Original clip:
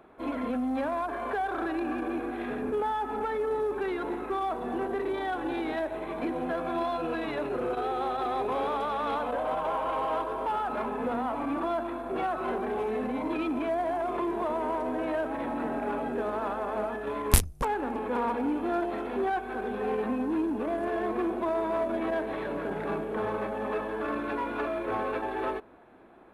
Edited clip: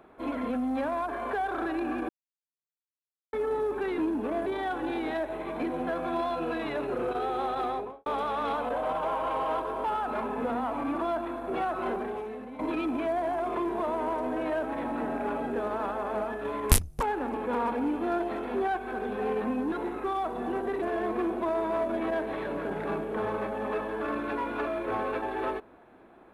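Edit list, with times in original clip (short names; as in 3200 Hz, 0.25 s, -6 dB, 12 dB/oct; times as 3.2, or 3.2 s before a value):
2.09–3.33 mute
3.98–5.08 swap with 20.34–20.82
8.25–8.68 studio fade out
12.56–13.21 fade out quadratic, to -11 dB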